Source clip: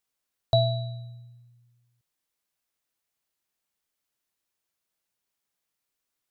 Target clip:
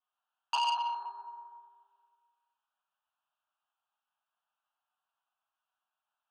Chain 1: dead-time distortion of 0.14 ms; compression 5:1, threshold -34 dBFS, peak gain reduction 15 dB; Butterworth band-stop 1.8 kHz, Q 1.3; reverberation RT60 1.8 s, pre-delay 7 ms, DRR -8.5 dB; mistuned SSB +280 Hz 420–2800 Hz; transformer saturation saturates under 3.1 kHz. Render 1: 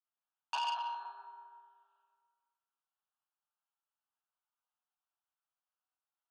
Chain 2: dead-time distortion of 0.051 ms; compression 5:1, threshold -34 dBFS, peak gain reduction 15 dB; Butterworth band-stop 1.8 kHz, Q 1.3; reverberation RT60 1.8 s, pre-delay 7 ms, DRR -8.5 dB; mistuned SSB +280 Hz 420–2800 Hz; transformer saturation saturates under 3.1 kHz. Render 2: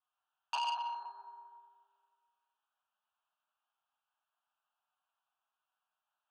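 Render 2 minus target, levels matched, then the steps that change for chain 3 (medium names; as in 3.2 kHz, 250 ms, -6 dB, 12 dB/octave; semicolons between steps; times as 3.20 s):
compression: peak gain reduction +5.5 dB
change: compression 5:1, threshold -27 dBFS, peak gain reduction 9.5 dB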